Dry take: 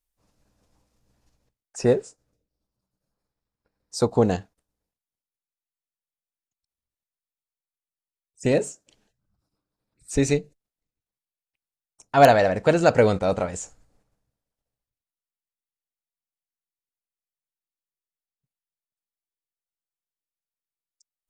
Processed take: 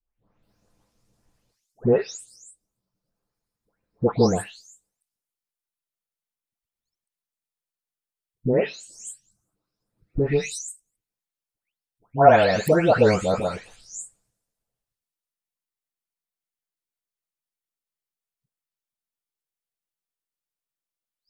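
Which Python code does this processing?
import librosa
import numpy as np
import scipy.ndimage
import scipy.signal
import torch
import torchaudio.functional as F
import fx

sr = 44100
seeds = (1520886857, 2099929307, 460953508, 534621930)

y = fx.spec_delay(x, sr, highs='late', ms=430)
y = y * 10.0 ** (1.5 / 20.0)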